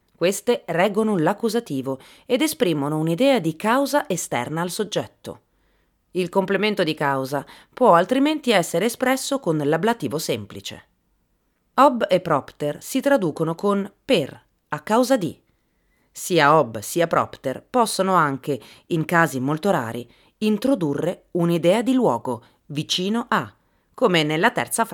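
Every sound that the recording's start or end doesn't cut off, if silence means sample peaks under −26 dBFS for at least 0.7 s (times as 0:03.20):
0:06.15–0:10.73
0:11.78–0:15.32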